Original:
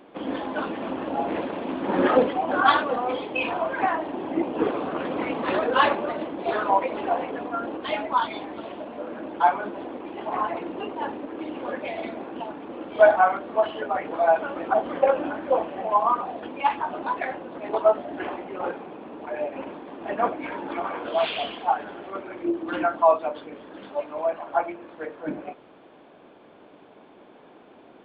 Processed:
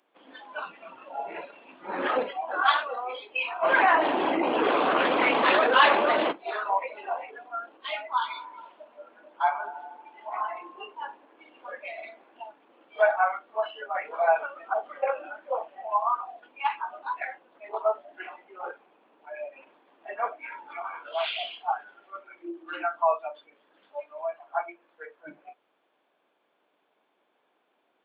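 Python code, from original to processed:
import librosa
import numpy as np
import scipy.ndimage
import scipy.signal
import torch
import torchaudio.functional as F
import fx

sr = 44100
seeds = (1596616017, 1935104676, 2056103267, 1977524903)

y = fx.env_flatten(x, sr, amount_pct=70, at=(3.62, 6.31), fade=0.02)
y = fx.echo_wet_bandpass(y, sr, ms=78, feedback_pct=82, hz=870.0, wet_db=-13, at=(8.05, 12.48))
y = fx.edit(y, sr, fx.clip_gain(start_s=13.95, length_s=0.51, db=3.5), tone=tone)
y = fx.highpass(y, sr, hz=1300.0, slope=6)
y = fx.noise_reduce_blind(y, sr, reduce_db=14)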